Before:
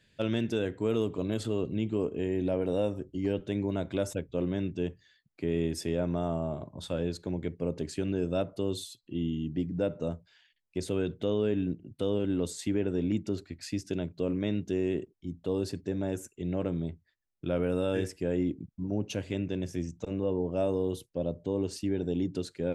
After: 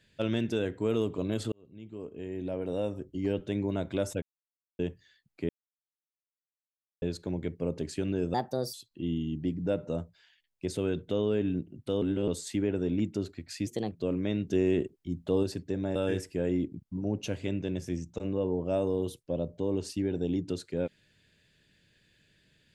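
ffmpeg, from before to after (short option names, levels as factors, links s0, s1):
-filter_complex "[0:a]asplit=15[s0][s1][s2][s3][s4][s5][s6][s7][s8][s9][s10][s11][s12][s13][s14];[s0]atrim=end=1.52,asetpts=PTS-STARTPTS,afade=t=out:st=1.516:d=0.004:c=hsin[s15];[s1]atrim=start=1.52:end=4.22,asetpts=PTS-STARTPTS,afade=t=in:d=1.8,afade=t=out:st=2.696:d=0.004:c=hsin[s16];[s2]atrim=start=4.22:end=4.79,asetpts=PTS-STARTPTS,volume=0[s17];[s3]atrim=start=4.79:end=5.49,asetpts=PTS-STARTPTS,afade=t=in:d=0.004:c=hsin,afade=t=out:st=0.696:d=0.004:c=hsin[s18];[s4]atrim=start=5.49:end=7.02,asetpts=PTS-STARTPTS,volume=0[s19];[s5]atrim=start=7.02:end=8.344,asetpts=PTS-STARTPTS,afade=t=in:d=0.004:c=hsin[s20];[s6]atrim=start=8.34:end=8.86,asetpts=PTS-STARTPTS,asetrate=57771,aresample=44100,atrim=end_sample=17505,asetpts=PTS-STARTPTS[s21];[s7]atrim=start=8.856:end=12.142[s22];[s8]atrim=start=12.138:end=12.402,asetpts=PTS-STARTPTS,areverse[s23];[s9]atrim=start=12.398:end=13.794[s24];[s10]atrim=start=13.79:end=14.09,asetpts=PTS-STARTPTS,asetrate=53361,aresample=44100[s25];[s11]atrim=start=14.086:end=14.642[s26];[s12]atrim=start=14.638:end=15.612,asetpts=PTS-STARTPTS,volume=1.5[s27];[s13]atrim=start=15.608:end=16.132[s28];[s14]atrim=start=17.818[s29];[s15][s16][s17][s18][s19][s20]concat=n=6:v=0:a=1[s30];[s30][s21]acrossfade=d=0.004:c1=hsin:c2=hsin[s31];[s31][s22]acrossfade=d=0.004:c1=hsin:c2=hsin[s32];[s32][s23]acrossfade=d=0.004:c1=hsin:c2=hsin[s33];[s33][s24]acrossfade=d=0.004:c1=hsin:c2=hsin[s34];[s34][s25]acrossfade=d=0.004:c1=hsin:c2=hsin[s35];[s35][s26]acrossfade=d=0.004:c1=hsin:c2=hsin[s36];[s36][s27]acrossfade=d=0.004:c1=hsin:c2=hsin[s37];[s37][s28]acrossfade=d=0.004:c1=hsin:c2=hsin[s38];[s38][s29]acrossfade=d=0.004:c1=hsin:c2=hsin"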